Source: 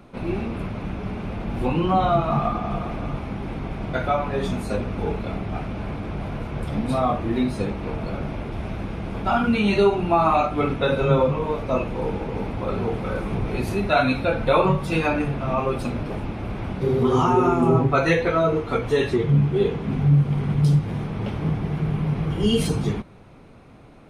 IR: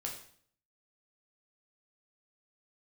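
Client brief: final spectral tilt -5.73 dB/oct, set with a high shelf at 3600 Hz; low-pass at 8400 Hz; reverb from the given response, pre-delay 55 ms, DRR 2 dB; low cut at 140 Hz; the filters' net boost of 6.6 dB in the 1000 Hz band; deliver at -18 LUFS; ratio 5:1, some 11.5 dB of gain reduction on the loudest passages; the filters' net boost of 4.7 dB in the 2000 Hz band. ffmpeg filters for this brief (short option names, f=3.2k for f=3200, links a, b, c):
-filter_complex "[0:a]highpass=140,lowpass=8.4k,equalizer=f=1k:t=o:g=8,equalizer=f=2k:t=o:g=4.5,highshelf=f=3.6k:g=-3.5,acompressor=threshold=-22dB:ratio=5,asplit=2[a][b];[1:a]atrim=start_sample=2205,adelay=55[c];[b][c]afir=irnorm=-1:irlink=0,volume=-2dB[d];[a][d]amix=inputs=2:normalize=0,volume=6.5dB"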